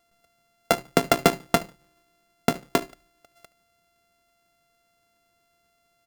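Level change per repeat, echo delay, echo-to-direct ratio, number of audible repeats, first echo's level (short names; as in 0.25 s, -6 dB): -11.5 dB, 73 ms, -22.5 dB, 2, -23.0 dB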